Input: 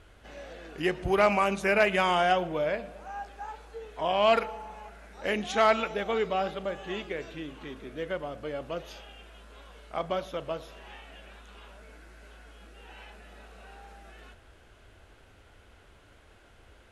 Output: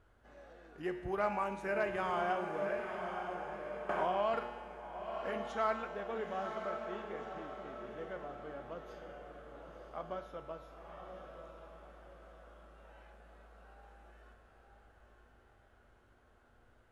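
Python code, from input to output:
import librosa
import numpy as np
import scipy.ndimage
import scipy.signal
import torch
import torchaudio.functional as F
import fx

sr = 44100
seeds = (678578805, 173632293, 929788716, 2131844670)

y = fx.high_shelf_res(x, sr, hz=1900.0, db=-6.5, q=1.5)
y = fx.comb_fb(y, sr, f0_hz=120.0, decay_s=1.5, harmonics='all', damping=0.0, mix_pct=80)
y = fx.echo_diffused(y, sr, ms=993, feedback_pct=44, wet_db=-6)
y = fx.band_squash(y, sr, depth_pct=100, at=(3.89, 4.34))
y = y * 10.0 ** (1.0 / 20.0)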